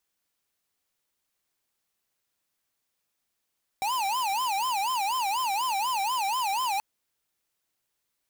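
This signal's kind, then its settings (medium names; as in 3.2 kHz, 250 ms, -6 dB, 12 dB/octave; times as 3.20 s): siren wail 773–1040 Hz 4.1 per s square -27.5 dBFS 2.98 s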